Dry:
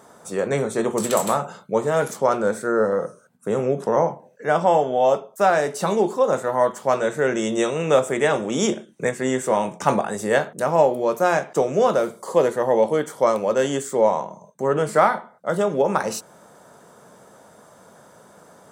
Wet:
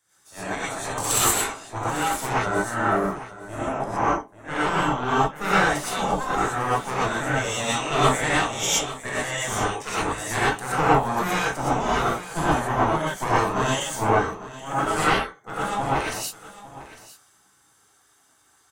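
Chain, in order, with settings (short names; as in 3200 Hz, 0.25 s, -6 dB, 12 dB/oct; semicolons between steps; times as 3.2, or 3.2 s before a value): tube stage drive 11 dB, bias 0.65; spectral gate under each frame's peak -10 dB weak; on a send: echo 0.852 s -12 dB; on the sum: non-linear reverb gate 0.14 s rising, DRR -7.5 dB; three-band expander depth 40%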